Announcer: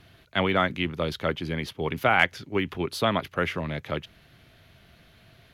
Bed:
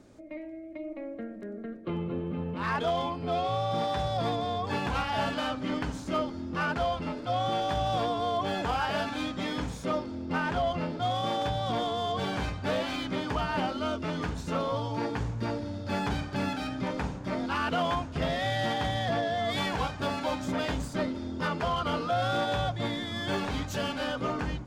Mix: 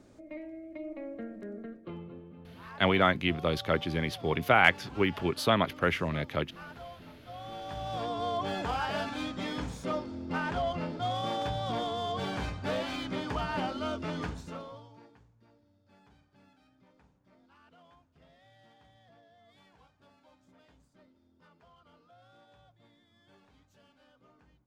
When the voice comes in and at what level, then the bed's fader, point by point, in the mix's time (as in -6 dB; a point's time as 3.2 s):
2.45 s, -1.0 dB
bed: 1.56 s -2 dB
2.33 s -17 dB
7.27 s -17 dB
8.23 s -3 dB
14.25 s -3 dB
15.3 s -32 dB